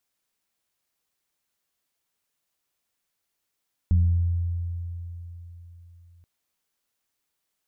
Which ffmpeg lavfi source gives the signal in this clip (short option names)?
-f lavfi -i "aevalsrc='0.178*pow(10,-3*t/3.79)*sin(2*PI*86.2*t+0.53*pow(10,-3*t/1.19)*sin(2*PI*1.09*86.2*t))':d=2.33:s=44100"